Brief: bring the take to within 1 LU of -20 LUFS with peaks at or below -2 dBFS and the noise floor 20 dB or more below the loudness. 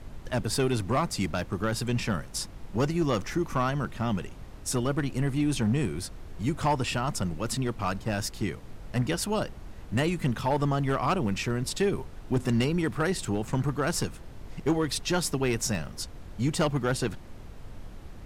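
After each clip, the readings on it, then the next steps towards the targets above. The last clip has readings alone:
clipped samples 0.6%; clipping level -18.5 dBFS; noise floor -44 dBFS; noise floor target -49 dBFS; loudness -29.0 LUFS; peak level -18.5 dBFS; loudness target -20.0 LUFS
-> clip repair -18.5 dBFS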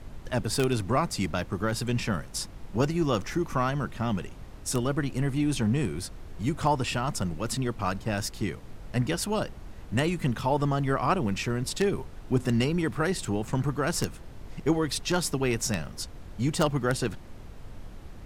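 clipped samples 0.0%; noise floor -44 dBFS; noise floor target -49 dBFS
-> noise print and reduce 6 dB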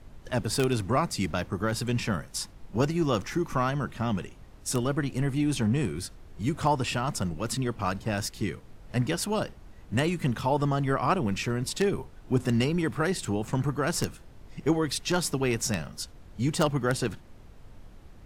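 noise floor -50 dBFS; loudness -28.5 LUFS; peak level -9.5 dBFS; loudness target -20.0 LUFS
-> trim +8.5 dB; peak limiter -2 dBFS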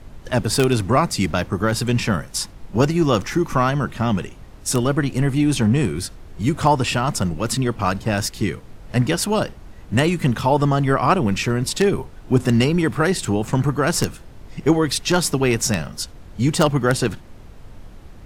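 loudness -20.5 LUFS; peak level -2.0 dBFS; noise floor -41 dBFS

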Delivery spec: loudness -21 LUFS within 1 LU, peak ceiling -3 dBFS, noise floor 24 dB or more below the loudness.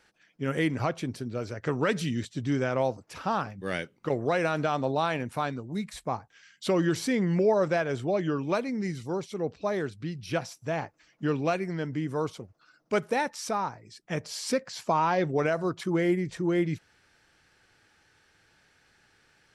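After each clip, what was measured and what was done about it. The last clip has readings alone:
loudness -29.5 LUFS; peak level -15.0 dBFS; loudness target -21.0 LUFS
-> trim +8.5 dB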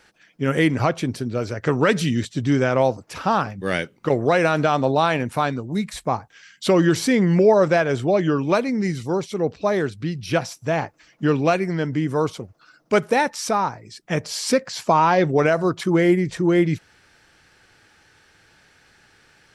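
loudness -21.0 LUFS; peak level -6.5 dBFS; noise floor -57 dBFS

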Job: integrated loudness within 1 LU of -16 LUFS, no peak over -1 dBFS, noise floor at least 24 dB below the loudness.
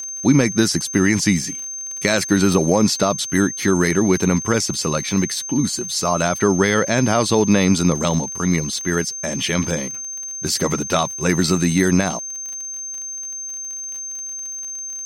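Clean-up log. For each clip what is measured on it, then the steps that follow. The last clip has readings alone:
tick rate 37 per s; steady tone 6.3 kHz; tone level -27 dBFS; loudness -19.5 LUFS; peak level -2.5 dBFS; loudness target -16.0 LUFS
-> de-click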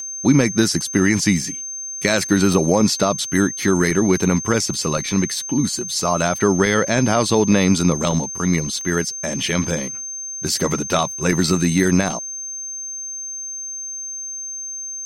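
tick rate 0.53 per s; steady tone 6.3 kHz; tone level -27 dBFS
-> band-stop 6.3 kHz, Q 30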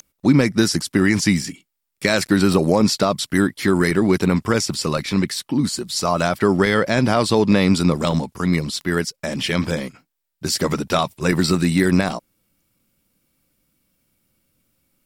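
steady tone not found; loudness -19.0 LUFS; peak level -3.0 dBFS; loudness target -16.0 LUFS
-> trim +3 dB; peak limiter -1 dBFS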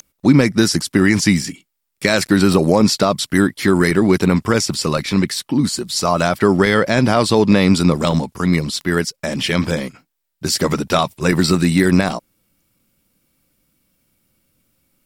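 loudness -16.0 LUFS; peak level -1.0 dBFS; noise floor -74 dBFS

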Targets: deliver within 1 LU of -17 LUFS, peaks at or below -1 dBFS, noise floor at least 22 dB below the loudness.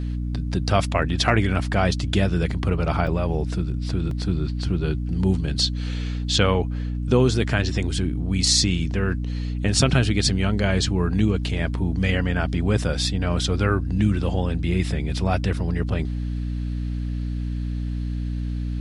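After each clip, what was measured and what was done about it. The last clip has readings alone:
dropouts 2; longest dropout 2.8 ms; hum 60 Hz; highest harmonic 300 Hz; hum level -24 dBFS; loudness -23.0 LUFS; peak level -2.5 dBFS; loudness target -17.0 LUFS
-> interpolate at 3.07/4.11 s, 2.8 ms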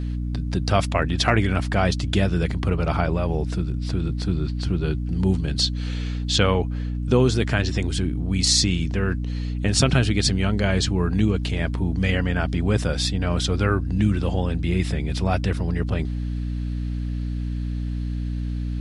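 dropouts 0; hum 60 Hz; highest harmonic 300 Hz; hum level -24 dBFS
-> hum notches 60/120/180/240/300 Hz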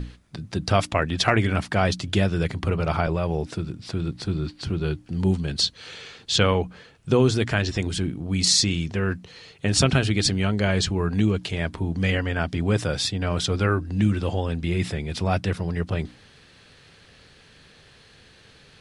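hum not found; loudness -24.0 LUFS; peak level -3.0 dBFS; loudness target -17.0 LUFS
-> trim +7 dB; peak limiter -1 dBFS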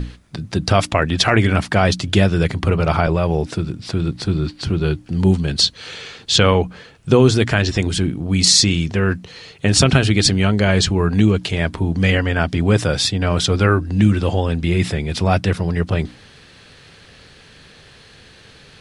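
loudness -17.5 LUFS; peak level -1.0 dBFS; noise floor -46 dBFS

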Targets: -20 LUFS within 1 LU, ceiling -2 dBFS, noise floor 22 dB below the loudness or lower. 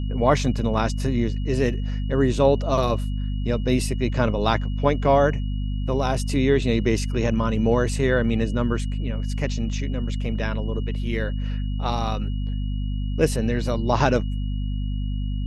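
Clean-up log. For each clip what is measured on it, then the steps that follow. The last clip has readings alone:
hum 50 Hz; highest harmonic 250 Hz; hum level -23 dBFS; steady tone 2.9 kHz; tone level -47 dBFS; loudness -23.5 LUFS; peak level -3.5 dBFS; loudness target -20.0 LUFS
-> hum notches 50/100/150/200/250 Hz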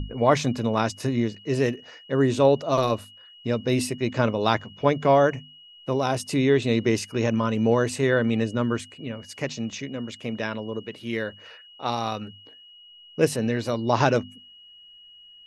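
hum not found; steady tone 2.9 kHz; tone level -47 dBFS
-> band-stop 2.9 kHz, Q 30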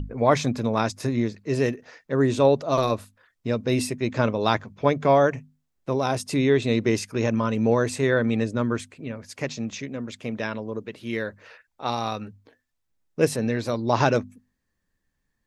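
steady tone not found; loudness -24.5 LUFS; peak level -4.5 dBFS; loudness target -20.0 LUFS
-> trim +4.5 dB; peak limiter -2 dBFS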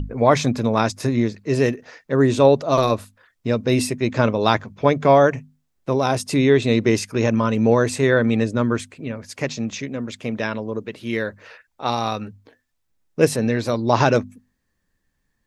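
loudness -20.0 LUFS; peak level -2.0 dBFS; noise floor -72 dBFS

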